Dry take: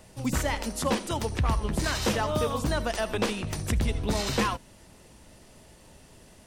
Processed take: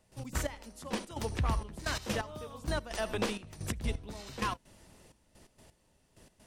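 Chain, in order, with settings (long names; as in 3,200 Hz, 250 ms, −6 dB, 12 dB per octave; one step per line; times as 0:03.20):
gate pattern ".x.x....x.xxxx." 129 BPM −12 dB
level −5 dB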